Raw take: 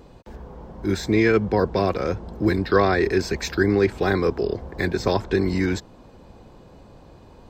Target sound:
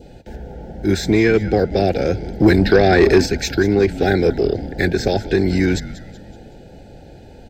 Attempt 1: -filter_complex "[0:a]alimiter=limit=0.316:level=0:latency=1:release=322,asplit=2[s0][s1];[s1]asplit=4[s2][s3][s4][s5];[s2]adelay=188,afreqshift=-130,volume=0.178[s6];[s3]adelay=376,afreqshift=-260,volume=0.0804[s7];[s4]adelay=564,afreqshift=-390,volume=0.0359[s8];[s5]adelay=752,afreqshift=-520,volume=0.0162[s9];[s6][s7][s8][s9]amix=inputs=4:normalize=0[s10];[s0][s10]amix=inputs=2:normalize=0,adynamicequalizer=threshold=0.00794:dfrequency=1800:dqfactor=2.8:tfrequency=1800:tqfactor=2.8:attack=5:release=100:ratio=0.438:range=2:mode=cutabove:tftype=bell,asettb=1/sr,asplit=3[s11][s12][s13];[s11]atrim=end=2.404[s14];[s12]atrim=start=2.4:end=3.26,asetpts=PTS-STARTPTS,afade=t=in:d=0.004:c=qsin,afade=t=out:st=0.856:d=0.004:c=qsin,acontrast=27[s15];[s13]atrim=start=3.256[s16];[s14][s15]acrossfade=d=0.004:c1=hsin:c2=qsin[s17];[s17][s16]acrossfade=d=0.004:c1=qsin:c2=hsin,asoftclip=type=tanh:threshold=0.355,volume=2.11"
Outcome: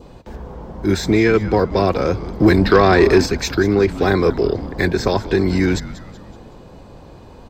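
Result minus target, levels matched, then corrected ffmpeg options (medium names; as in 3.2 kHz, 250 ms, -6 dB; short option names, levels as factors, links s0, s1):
1 kHz band +3.0 dB
-filter_complex "[0:a]alimiter=limit=0.316:level=0:latency=1:release=322,asplit=2[s0][s1];[s1]asplit=4[s2][s3][s4][s5];[s2]adelay=188,afreqshift=-130,volume=0.178[s6];[s3]adelay=376,afreqshift=-260,volume=0.0804[s7];[s4]adelay=564,afreqshift=-390,volume=0.0359[s8];[s5]adelay=752,afreqshift=-520,volume=0.0162[s9];[s6][s7][s8][s9]amix=inputs=4:normalize=0[s10];[s0][s10]amix=inputs=2:normalize=0,adynamicequalizer=threshold=0.00794:dfrequency=1800:dqfactor=2.8:tfrequency=1800:tqfactor=2.8:attack=5:release=100:ratio=0.438:range=2:mode=cutabove:tftype=bell,asuperstop=centerf=1100:order=12:qfactor=2.2,asettb=1/sr,asplit=3[s11][s12][s13];[s11]atrim=end=2.404[s14];[s12]atrim=start=2.4:end=3.26,asetpts=PTS-STARTPTS,afade=t=in:d=0.004:c=qsin,afade=t=out:st=0.856:d=0.004:c=qsin,acontrast=27[s15];[s13]atrim=start=3.256[s16];[s14][s15]acrossfade=d=0.004:c1=hsin:c2=qsin[s17];[s17][s16]acrossfade=d=0.004:c1=qsin:c2=hsin,asoftclip=type=tanh:threshold=0.355,volume=2.11"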